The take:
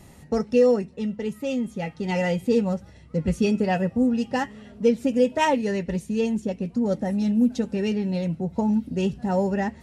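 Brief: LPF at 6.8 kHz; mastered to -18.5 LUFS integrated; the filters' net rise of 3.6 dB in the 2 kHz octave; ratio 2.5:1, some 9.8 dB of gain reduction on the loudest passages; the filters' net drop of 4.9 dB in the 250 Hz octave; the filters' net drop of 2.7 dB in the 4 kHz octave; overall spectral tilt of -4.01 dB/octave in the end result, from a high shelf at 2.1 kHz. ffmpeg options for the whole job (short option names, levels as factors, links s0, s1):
-af "lowpass=6800,equalizer=f=250:t=o:g=-6,equalizer=f=2000:t=o:g=7,highshelf=f=2100:g=-3,equalizer=f=4000:t=o:g=-4.5,acompressor=threshold=0.0282:ratio=2.5,volume=5.31"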